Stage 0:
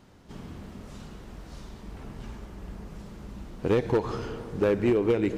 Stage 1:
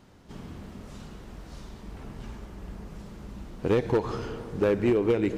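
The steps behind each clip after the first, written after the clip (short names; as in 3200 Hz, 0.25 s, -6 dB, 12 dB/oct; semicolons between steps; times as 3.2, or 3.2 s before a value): nothing audible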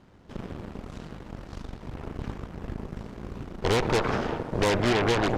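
one-sided fold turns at -22 dBFS; high shelf 4700 Hz -11.5 dB; added harmonics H 8 -7 dB, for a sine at -16.5 dBFS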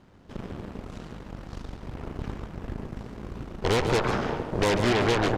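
echo 0.142 s -9.5 dB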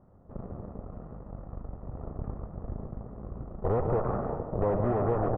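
LPF 1100 Hz 24 dB/oct; comb 1.6 ms, depth 35%; gain -3 dB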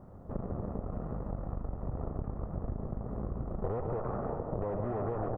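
compressor 10:1, threshold -38 dBFS, peak gain reduction 16 dB; gain +7.5 dB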